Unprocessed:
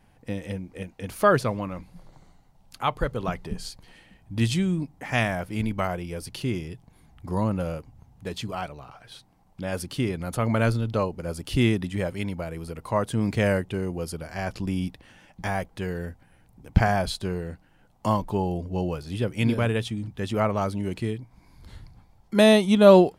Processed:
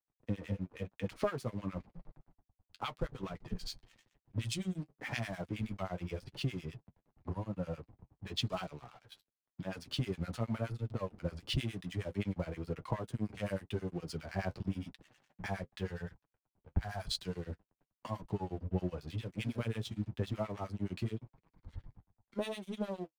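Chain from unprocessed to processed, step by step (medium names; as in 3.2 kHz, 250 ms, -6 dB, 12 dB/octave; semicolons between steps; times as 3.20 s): single-diode clipper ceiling -14.5 dBFS; level-controlled noise filter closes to 2.5 kHz, open at -19.5 dBFS; 15.87–17.08 s: peaking EQ 290 Hz -13 dB 1.3 oct; harmonic-percussive split harmonic +3 dB; treble shelf 2.5 kHz +3.5 dB; compression 20:1, threshold -31 dBFS, peak gain reduction 25 dB; harmonic tremolo 9.6 Hz, depth 100%, crossover 1.2 kHz; crossover distortion -55 dBFS; flange 0.93 Hz, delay 5.9 ms, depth 5.3 ms, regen -35%; three bands expanded up and down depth 40%; trim +5.5 dB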